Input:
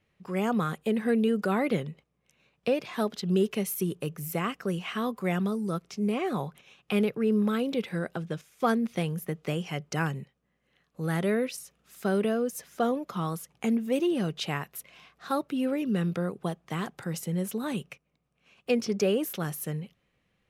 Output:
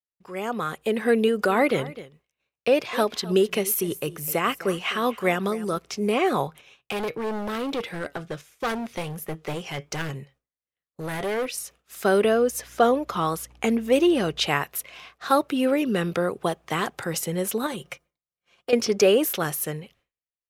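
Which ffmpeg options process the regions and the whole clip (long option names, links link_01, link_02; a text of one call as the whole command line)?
ffmpeg -i in.wav -filter_complex "[0:a]asettb=1/sr,asplit=3[link_01][link_02][link_03];[link_01]atrim=end=1.244[link_04];[link_02]atrim=start=1.24:end=5.77,asetpts=PTS-STARTPTS,afade=type=in:duration=0.004:curve=qsin,afade=type=out:start_time=4.526:duration=0.004:curve=qsin,aecho=1:1:256:0.133,atrim=end_sample=199773,tremolo=f=5.2:d=0.31[link_05];[link_03]atrim=start=5.766[link_06];[link_04][link_05]acrossfade=duration=0.004:curve1=hsin:curve2=qsin[link_07];[link_07][link_06]acrossfade=duration=0.004:curve1=qsin:curve2=hsin,asettb=1/sr,asplit=3[link_08][link_09][link_10];[link_08]atrim=end=6.474[link_11];[link_09]atrim=start=6.47:end=11.57,asetpts=PTS-STARTPTS,afade=type=in:duration=0.004:curve=qsin,afade=type=out:start_time=5.096:duration=0.004:curve=qsin,lowshelf=frequency=360:gain=2.5,flanger=delay=6.2:depth=1.3:regen=75:speed=1.4:shape=sinusoidal,asoftclip=type=hard:threshold=-31.5dB[link_12];[link_10]atrim=start=11.566[link_13];[link_11][link_12]acrossfade=duration=0.004:curve1=hsin:curve2=qsin[link_14];[link_14][link_13]acrossfade=duration=0.004:curve1=qsin:curve2=hsin,asettb=1/sr,asplit=3[link_15][link_16][link_17];[link_15]atrim=end=12.234[link_18];[link_16]atrim=start=12.23:end=14.47,asetpts=PTS-STARTPTS,afade=type=in:duration=0.004:curve=qsin,afade=type=out:start_time=2.236:duration=0.004:curve=qsin,highshelf=frequency=9700:gain=-4.5,aeval=exprs='val(0)+0.00112*(sin(2*PI*60*n/s)+sin(2*PI*2*60*n/s)/2+sin(2*PI*3*60*n/s)/3+sin(2*PI*4*60*n/s)/4+sin(2*PI*5*60*n/s)/5)':channel_layout=same[link_19];[link_17]atrim=start=14.466[link_20];[link_18][link_19]acrossfade=duration=0.004:curve1=hsin:curve2=qsin[link_21];[link_21][link_20]acrossfade=duration=0.004:curve1=qsin:curve2=hsin,asettb=1/sr,asplit=3[link_22][link_23][link_24];[link_22]atrim=end=17.664[link_25];[link_23]atrim=start=17.66:end=18.73,asetpts=PTS-STARTPTS,afade=type=in:duration=0.004:curve=qsin,afade=type=out:start_time=1.066:duration=0.004:curve=qsin,bandreject=frequency=2600:width=6.9,aecho=1:1:5.7:0.49,atrim=end_sample=47187,acompressor=threshold=-36dB:ratio=2.5:attack=3.2:release=140:knee=1:detection=peak[link_26];[link_24]atrim=start=18.726[link_27];[link_25][link_26]acrossfade=duration=0.004:curve1=hsin:curve2=qsin[link_28];[link_28][link_27]acrossfade=duration=0.004:curve1=qsin:curve2=hsin,agate=range=-33dB:threshold=-54dB:ratio=3:detection=peak,equalizer=frequency=180:width=1.3:gain=-11,dynaudnorm=framelen=250:gausssize=7:maxgain=10dB" out.wav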